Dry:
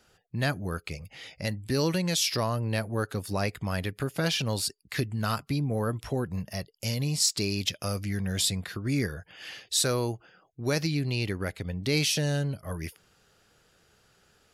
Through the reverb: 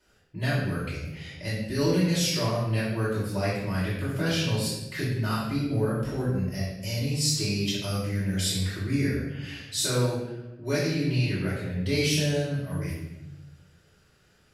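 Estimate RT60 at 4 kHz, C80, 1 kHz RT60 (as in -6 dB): 0.75 s, 4.0 dB, 0.85 s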